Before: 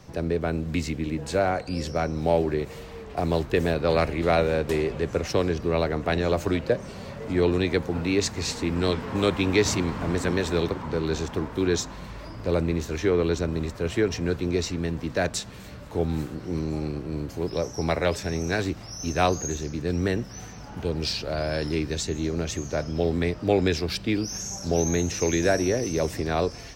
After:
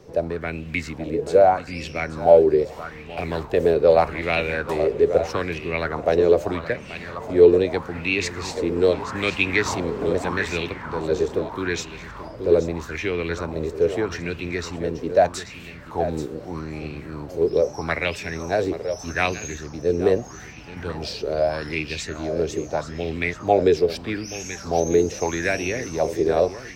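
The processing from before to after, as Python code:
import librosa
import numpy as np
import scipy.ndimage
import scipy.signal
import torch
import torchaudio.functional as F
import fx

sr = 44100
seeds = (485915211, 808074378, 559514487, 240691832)

y = x + 10.0 ** (-11.0 / 20.0) * np.pad(x, (int(831 * sr / 1000.0), 0))[:len(x)]
y = fx.bell_lfo(y, sr, hz=0.8, low_hz=410.0, high_hz=2700.0, db=17)
y = y * librosa.db_to_amplitude(-4.0)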